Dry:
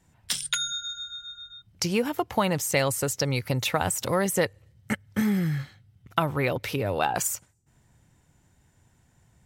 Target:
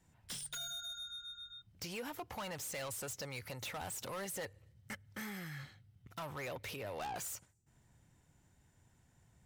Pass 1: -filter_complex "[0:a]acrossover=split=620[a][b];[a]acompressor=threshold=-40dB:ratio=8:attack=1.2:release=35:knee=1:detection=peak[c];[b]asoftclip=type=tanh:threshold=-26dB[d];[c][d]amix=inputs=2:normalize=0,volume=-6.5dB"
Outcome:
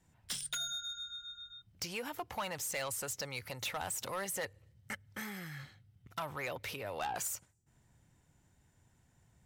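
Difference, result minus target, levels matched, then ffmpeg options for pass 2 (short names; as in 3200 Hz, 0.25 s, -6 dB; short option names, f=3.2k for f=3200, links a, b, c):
soft clip: distortion -5 dB
-filter_complex "[0:a]acrossover=split=620[a][b];[a]acompressor=threshold=-40dB:ratio=8:attack=1.2:release=35:knee=1:detection=peak[c];[b]asoftclip=type=tanh:threshold=-34.5dB[d];[c][d]amix=inputs=2:normalize=0,volume=-6.5dB"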